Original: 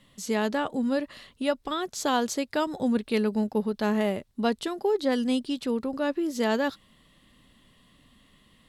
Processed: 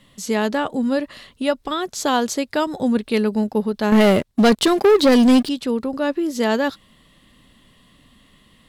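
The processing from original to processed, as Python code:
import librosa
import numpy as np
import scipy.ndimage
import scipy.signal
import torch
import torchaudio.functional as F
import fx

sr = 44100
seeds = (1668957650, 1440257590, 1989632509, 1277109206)

y = fx.leveller(x, sr, passes=3, at=(3.92, 5.49))
y = F.gain(torch.from_numpy(y), 6.0).numpy()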